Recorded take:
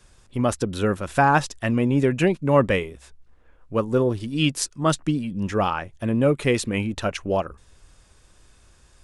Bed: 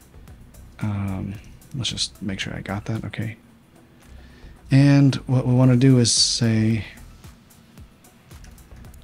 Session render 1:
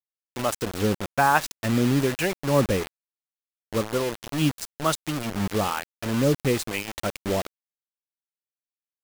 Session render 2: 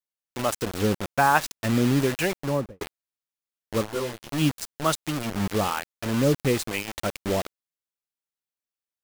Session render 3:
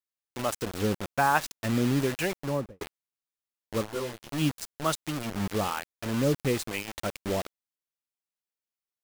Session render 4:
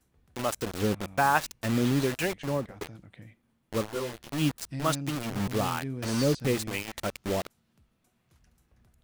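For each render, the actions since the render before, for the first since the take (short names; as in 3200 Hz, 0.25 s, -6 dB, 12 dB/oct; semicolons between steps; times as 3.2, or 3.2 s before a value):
harmonic tremolo 1.1 Hz, depth 70%, crossover 560 Hz; bit-crush 5-bit
2.35–2.81 studio fade out; 3.86–4.29 detuned doubles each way 25 cents
gain -4 dB
add bed -21 dB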